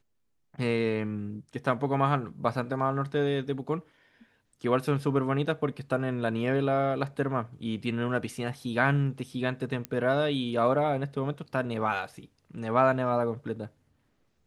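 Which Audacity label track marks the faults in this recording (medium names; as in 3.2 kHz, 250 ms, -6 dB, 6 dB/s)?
9.850000	9.850000	pop -17 dBFS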